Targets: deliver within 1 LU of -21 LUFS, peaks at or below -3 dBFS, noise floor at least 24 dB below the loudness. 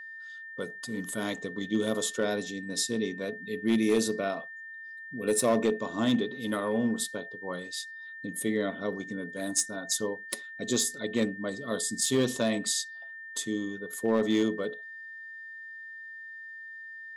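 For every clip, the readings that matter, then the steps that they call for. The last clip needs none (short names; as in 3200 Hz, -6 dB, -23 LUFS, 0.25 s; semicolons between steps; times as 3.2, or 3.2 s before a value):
clipped 0.3%; flat tops at -18.0 dBFS; steady tone 1800 Hz; tone level -41 dBFS; loudness -30.5 LUFS; peak -18.0 dBFS; loudness target -21.0 LUFS
-> clip repair -18 dBFS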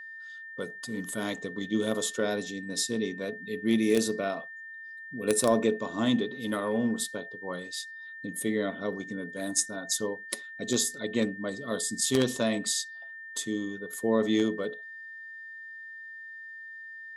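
clipped 0.0%; steady tone 1800 Hz; tone level -41 dBFS
-> notch 1800 Hz, Q 30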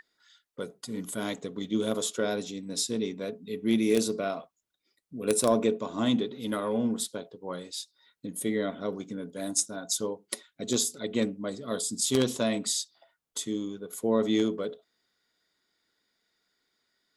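steady tone none; loudness -30.0 LUFS; peak -9.0 dBFS; loudness target -21.0 LUFS
-> gain +9 dB; limiter -3 dBFS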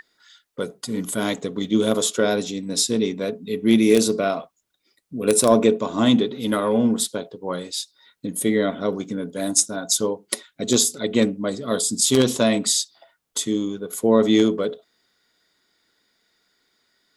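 loudness -21.0 LUFS; peak -3.0 dBFS; noise floor -71 dBFS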